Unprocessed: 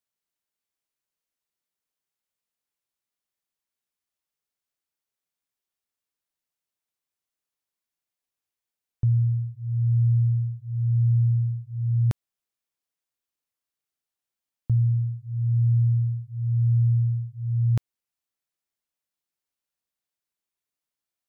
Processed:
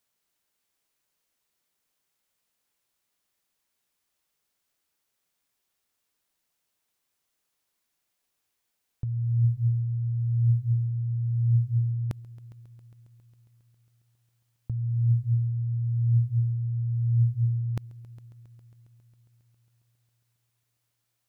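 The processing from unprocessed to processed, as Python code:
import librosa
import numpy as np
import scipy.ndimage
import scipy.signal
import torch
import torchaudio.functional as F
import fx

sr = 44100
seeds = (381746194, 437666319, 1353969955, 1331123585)

p1 = fx.over_compress(x, sr, threshold_db=-29.0, ratio=-1.0)
p2 = p1 + fx.echo_heads(p1, sr, ms=136, heads='all three', feedback_pct=64, wet_db=-24, dry=0)
y = p2 * 10.0 ** (3.5 / 20.0)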